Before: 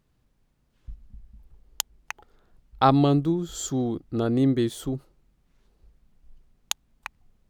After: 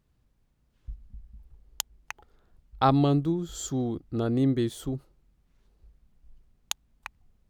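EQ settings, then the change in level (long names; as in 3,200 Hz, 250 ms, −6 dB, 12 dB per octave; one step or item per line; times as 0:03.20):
parametric band 63 Hz +5.5 dB 1.7 octaves
−3.5 dB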